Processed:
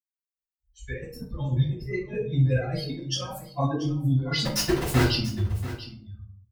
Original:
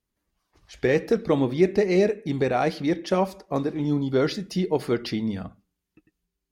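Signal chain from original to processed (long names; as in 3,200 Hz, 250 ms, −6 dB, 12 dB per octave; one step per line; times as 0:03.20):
spectral dynamics exaggerated over time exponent 3
brickwall limiter −21 dBFS, peak gain reduction 9.5 dB
0:01.30–0:02.23: comb filter 5.6 ms, depth 84%
compressor whose output falls as the input rises −38 dBFS, ratio −0.5
0:04.40–0:05.00: log-companded quantiser 2 bits
parametric band 180 Hz −8 dB 1.5 octaves
single-tap delay 686 ms −15 dB
convolution reverb RT60 0.55 s, pre-delay 47 ms
level +7.5 dB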